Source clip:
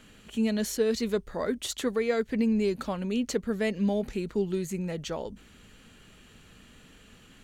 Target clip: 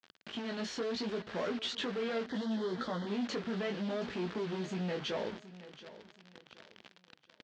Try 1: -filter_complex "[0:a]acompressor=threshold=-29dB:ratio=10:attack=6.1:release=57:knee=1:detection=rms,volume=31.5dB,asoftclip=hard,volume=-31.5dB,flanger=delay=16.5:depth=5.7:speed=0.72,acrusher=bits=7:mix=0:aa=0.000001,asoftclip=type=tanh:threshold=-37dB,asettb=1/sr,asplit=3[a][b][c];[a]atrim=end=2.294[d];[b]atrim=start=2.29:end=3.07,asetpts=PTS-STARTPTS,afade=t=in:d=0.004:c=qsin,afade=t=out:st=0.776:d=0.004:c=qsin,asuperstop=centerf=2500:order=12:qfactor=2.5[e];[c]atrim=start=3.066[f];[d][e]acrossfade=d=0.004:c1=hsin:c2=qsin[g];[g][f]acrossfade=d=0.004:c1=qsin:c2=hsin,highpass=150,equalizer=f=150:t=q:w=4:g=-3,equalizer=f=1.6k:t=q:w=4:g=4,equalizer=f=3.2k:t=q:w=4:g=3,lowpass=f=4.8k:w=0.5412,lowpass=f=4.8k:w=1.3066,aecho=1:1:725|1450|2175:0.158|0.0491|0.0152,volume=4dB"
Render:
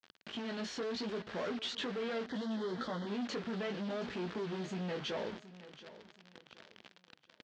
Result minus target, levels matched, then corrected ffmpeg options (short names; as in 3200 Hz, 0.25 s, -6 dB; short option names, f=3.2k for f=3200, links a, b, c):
soft clip: distortion +10 dB
-filter_complex "[0:a]acompressor=threshold=-29dB:ratio=10:attack=6.1:release=57:knee=1:detection=rms,volume=31.5dB,asoftclip=hard,volume=-31.5dB,flanger=delay=16.5:depth=5.7:speed=0.72,acrusher=bits=7:mix=0:aa=0.000001,asoftclip=type=tanh:threshold=-30.5dB,asettb=1/sr,asplit=3[a][b][c];[a]atrim=end=2.294[d];[b]atrim=start=2.29:end=3.07,asetpts=PTS-STARTPTS,afade=t=in:d=0.004:c=qsin,afade=t=out:st=0.776:d=0.004:c=qsin,asuperstop=centerf=2500:order=12:qfactor=2.5[e];[c]atrim=start=3.066[f];[d][e]acrossfade=d=0.004:c1=hsin:c2=qsin[g];[g][f]acrossfade=d=0.004:c1=qsin:c2=hsin,highpass=150,equalizer=f=150:t=q:w=4:g=-3,equalizer=f=1.6k:t=q:w=4:g=4,equalizer=f=3.2k:t=q:w=4:g=3,lowpass=f=4.8k:w=0.5412,lowpass=f=4.8k:w=1.3066,aecho=1:1:725|1450|2175:0.158|0.0491|0.0152,volume=4dB"